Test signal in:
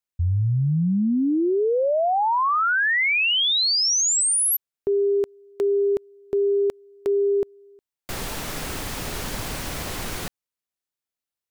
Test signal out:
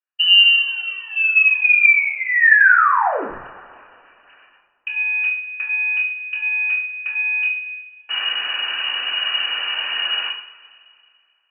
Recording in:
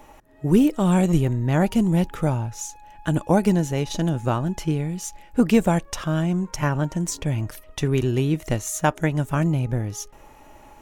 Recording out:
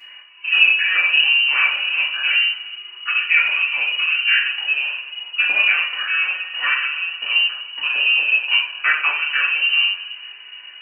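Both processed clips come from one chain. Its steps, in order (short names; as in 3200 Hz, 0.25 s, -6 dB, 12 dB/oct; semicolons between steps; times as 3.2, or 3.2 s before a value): in parallel at -9.5 dB: companded quantiser 4-bit; on the sum: fixed phaser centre 760 Hz, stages 6; inverted band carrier 2900 Hz; two-slope reverb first 0.51 s, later 2.4 s, from -20 dB, DRR -8 dB; gain -2 dB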